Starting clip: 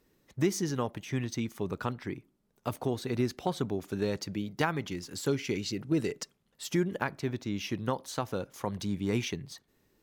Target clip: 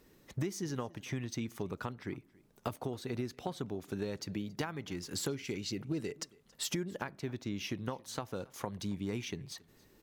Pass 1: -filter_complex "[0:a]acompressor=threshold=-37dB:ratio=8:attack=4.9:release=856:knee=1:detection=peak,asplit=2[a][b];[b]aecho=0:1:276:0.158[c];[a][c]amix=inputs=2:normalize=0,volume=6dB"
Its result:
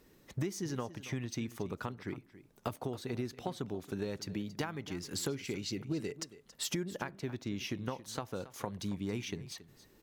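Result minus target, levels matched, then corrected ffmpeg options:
echo-to-direct +8 dB
-filter_complex "[0:a]acompressor=threshold=-37dB:ratio=8:attack=4.9:release=856:knee=1:detection=peak,asplit=2[a][b];[b]aecho=0:1:276:0.0631[c];[a][c]amix=inputs=2:normalize=0,volume=6dB"

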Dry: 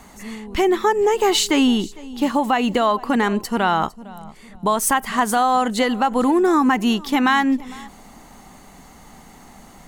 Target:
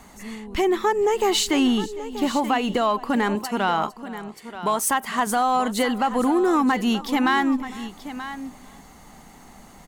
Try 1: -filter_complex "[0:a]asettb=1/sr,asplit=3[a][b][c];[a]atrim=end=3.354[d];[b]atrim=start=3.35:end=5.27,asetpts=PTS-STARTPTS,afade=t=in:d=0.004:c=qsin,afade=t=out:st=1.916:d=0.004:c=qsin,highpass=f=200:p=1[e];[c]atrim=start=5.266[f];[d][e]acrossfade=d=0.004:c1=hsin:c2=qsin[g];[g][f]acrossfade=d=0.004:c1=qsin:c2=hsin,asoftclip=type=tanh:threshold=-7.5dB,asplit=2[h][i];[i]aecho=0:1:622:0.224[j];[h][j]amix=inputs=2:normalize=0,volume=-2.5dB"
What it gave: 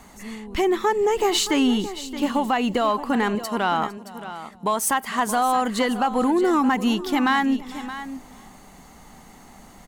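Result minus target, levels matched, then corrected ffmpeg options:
echo 0.309 s early
-filter_complex "[0:a]asettb=1/sr,asplit=3[a][b][c];[a]atrim=end=3.354[d];[b]atrim=start=3.35:end=5.27,asetpts=PTS-STARTPTS,afade=t=in:d=0.004:c=qsin,afade=t=out:st=1.916:d=0.004:c=qsin,highpass=f=200:p=1[e];[c]atrim=start=5.266[f];[d][e]acrossfade=d=0.004:c1=hsin:c2=qsin[g];[g][f]acrossfade=d=0.004:c1=qsin:c2=hsin,asoftclip=type=tanh:threshold=-7.5dB,asplit=2[h][i];[i]aecho=0:1:931:0.224[j];[h][j]amix=inputs=2:normalize=0,volume=-2.5dB"

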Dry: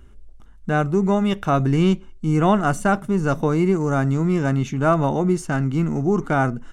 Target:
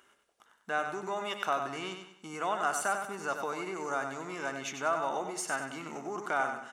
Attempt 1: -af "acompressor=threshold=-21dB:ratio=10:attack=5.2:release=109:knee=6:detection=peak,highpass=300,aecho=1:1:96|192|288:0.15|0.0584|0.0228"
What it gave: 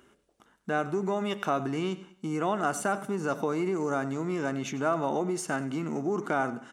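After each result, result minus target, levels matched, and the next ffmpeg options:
250 Hz band +8.5 dB; echo-to-direct -9.5 dB
-af "acompressor=threshold=-21dB:ratio=10:attack=5.2:release=109:knee=6:detection=peak,highpass=740,aecho=1:1:96|192|288:0.15|0.0584|0.0228"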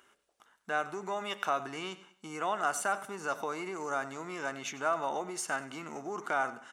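echo-to-direct -9.5 dB
-af "acompressor=threshold=-21dB:ratio=10:attack=5.2:release=109:knee=6:detection=peak,highpass=740,aecho=1:1:96|192|288|384|480:0.447|0.174|0.0679|0.0265|0.0103"

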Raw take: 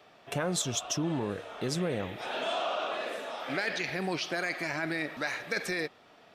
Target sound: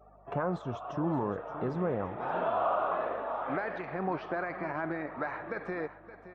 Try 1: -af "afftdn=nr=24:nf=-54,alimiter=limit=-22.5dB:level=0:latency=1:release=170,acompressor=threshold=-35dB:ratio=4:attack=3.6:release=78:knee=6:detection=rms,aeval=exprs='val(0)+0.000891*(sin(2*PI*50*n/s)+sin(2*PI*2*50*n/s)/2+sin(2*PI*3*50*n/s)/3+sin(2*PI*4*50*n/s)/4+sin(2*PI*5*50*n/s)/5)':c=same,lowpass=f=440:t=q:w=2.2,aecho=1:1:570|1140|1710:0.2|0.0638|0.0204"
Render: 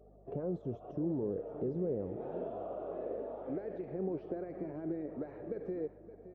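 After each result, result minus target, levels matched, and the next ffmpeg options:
1000 Hz band -12.0 dB; compressor: peak gain reduction +7.5 dB
-af "afftdn=nr=24:nf=-54,alimiter=limit=-22.5dB:level=0:latency=1:release=170,acompressor=threshold=-35dB:ratio=4:attack=3.6:release=78:knee=6:detection=rms,aeval=exprs='val(0)+0.000891*(sin(2*PI*50*n/s)+sin(2*PI*2*50*n/s)/2+sin(2*PI*3*50*n/s)/3+sin(2*PI*4*50*n/s)/4+sin(2*PI*5*50*n/s)/5)':c=same,lowpass=f=1.1k:t=q:w=2.2,aecho=1:1:570|1140|1710:0.2|0.0638|0.0204"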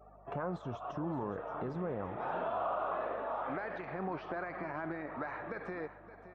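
compressor: peak gain reduction +7.5 dB
-af "afftdn=nr=24:nf=-54,alimiter=limit=-22.5dB:level=0:latency=1:release=170,aeval=exprs='val(0)+0.000891*(sin(2*PI*50*n/s)+sin(2*PI*2*50*n/s)/2+sin(2*PI*3*50*n/s)/3+sin(2*PI*4*50*n/s)/4+sin(2*PI*5*50*n/s)/5)':c=same,lowpass=f=1.1k:t=q:w=2.2,aecho=1:1:570|1140|1710:0.2|0.0638|0.0204"

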